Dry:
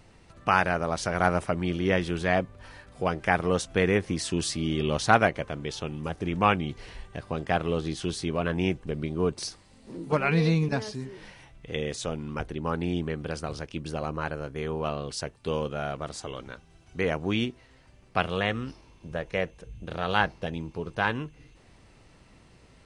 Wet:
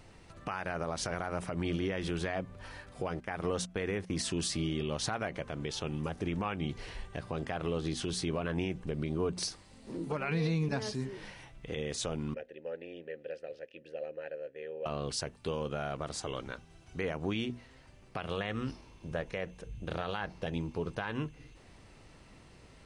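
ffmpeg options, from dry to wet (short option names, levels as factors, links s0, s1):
-filter_complex "[0:a]asettb=1/sr,asplit=3[s0][s1][s2];[s0]atrim=end=3.084[s3];[s1]atrim=start=3.08:end=4.29,asetpts=PTS-STARTPTS,afade=t=in:d=0.004:c=qsin,afade=t=out:st=1.206:d=0.004:c=qsin,agate=range=0.158:threshold=0.0126:ratio=16:release=100:detection=peak[s4];[s2]atrim=start=4.286[s5];[s3][s4]acrossfade=d=0.004:c1=hsin:c2=qsin[s6];[s6][s5]acrossfade=d=0.004:c1=qsin:c2=hsin,asettb=1/sr,asplit=3[s7][s8][s9];[s7]atrim=end=12.344[s10];[s8]atrim=start=12.34:end=14.86,asetpts=PTS-STARTPTS,afade=t=in:d=0.004:c=qsin,afade=t=out:st=2.516:d=0.004:c=qsin,asplit=3[s11][s12][s13];[s11]bandpass=f=530:t=q:w=8,volume=1[s14];[s12]bandpass=f=1840:t=q:w=8,volume=0.501[s15];[s13]bandpass=f=2480:t=q:w=8,volume=0.355[s16];[s14][s15][s16]amix=inputs=3:normalize=0[s17];[s9]atrim=start=14.856[s18];[s10][s17]acrossfade=d=0.004:c1=hsin:c2=qsin[s19];[s19][s18]acrossfade=d=0.004:c1=qsin:c2=hsin,bandreject=f=60:t=h:w=6,bandreject=f=120:t=h:w=6,bandreject=f=180:t=h:w=6,bandreject=f=240:t=h:w=6,acompressor=threshold=0.0501:ratio=2.5,alimiter=limit=0.0668:level=0:latency=1:release=93"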